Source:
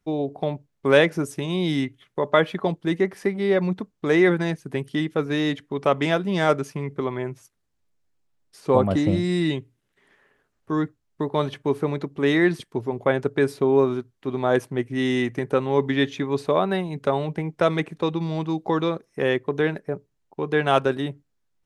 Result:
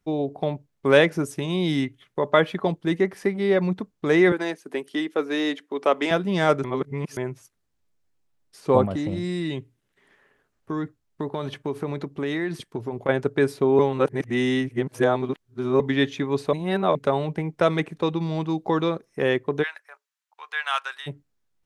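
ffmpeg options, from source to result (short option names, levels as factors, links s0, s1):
-filter_complex "[0:a]asettb=1/sr,asplit=3[s0][s1][s2];[s0]atrim=end=4.324[s3];[s1]atrim=start=4.32:end=6.11,asetpts=PTS-STARTPTS,afade=t=in:d=0.004:c=qsin,afade=t=out:st=1.786:d=0.004:c=qsin,highpass=f=270:w=0.5412,highpass=f=270:w=1.3066[s4];[s2]atrim=start=6.106[s5];[s3][s4]acrossfade=d=0.004:c1=hsin:c2=qsin[s6];[s6][s5]acrossfade=d=0.004:c1=qsin:c2=hsin,asettb=1/sr,asplit=3[s7][s8][s9];[s7]atrim=end=8.854[s10];[s8]atrim=start=8.85:end=13.09,asetpts=PTS-STARTPTS,afade=t=in:d=0.004:c=qsin,afade=t=out:st=4.236:d=0.004:c=qsin,acompressor=threshold=0.0631:ratio=4:attack=3.2:release=140:knee=1:detection=peak[s11];[s9]atrim=start=13.086[s12];[s10][s11]acrossfade=d=0.004:c1=hsin:c2=qsin[s13];[s13][s12]acrossfade=d=0.004:c1=qsin:c2=hsin,asplit=3[s14][s15][s16];[s14]afade=t=out:st=19.62:d=0.02[s17];[s15]highpass=f=1100:w=0.5412,highpass=f=1100:w=1.3066,afade=t=in:st=19.62:d=0.02,afade=t=out:st=21.06:d=0.02[s18];[s16]afade=t=in:st=21.06:d=0.02[s19];[s17][s18][s19]amix=inputs=3:normalize=0,asplit=7[s20][s21][s22][s23][s24][s25][s26];[s20]atrim=end=6.642[s27];[s21]atrim=start=6.638:end=7.172,asetpts=PTS-STARTPTS,areverse[s28];[s22]atrim=start=7.168:end=13.792[s29];[s23]atrim=start=13.788:end=15.802,asetpts=PTS-STARTPTS,areverse[s30];[s24]atrim=start=15.798:end=16.532[s31];[s25]atrim=start=16.528:end=16.952,asetpts=PTS-STARTPTS,areverse[s32];[s26]atrim=start=16.948[s33];[s27][s28]acrossfade=d=0.004:c1=hsin:c2=hsin[s34];[s34][s29]acrossfade=d=0.004:c1=hsin:c2=hsin[s35];[s35][s30]acrossfade=d=0.004:c1=hsin:c2=hsin[s36];[s36][s31]acrossfade=d=0.004:c1=hsin:c2=hsin[s37];[s37][s32]acrossfade=d=0.004:c1=hsin:c2=hsin[s38];[s38][s33]acrossfade=d=0.004:c1=hsin:c2=hsin"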